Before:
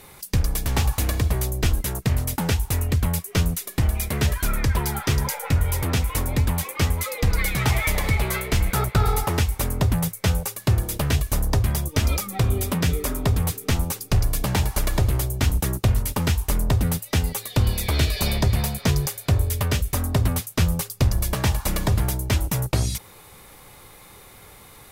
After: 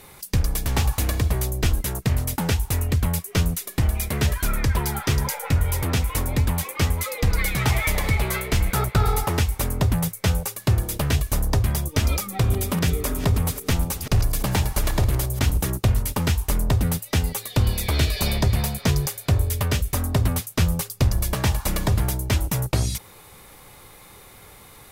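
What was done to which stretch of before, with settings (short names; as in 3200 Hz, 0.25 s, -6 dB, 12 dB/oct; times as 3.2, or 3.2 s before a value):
12.19–15.7 reverse delay 0.282 s, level -12 dB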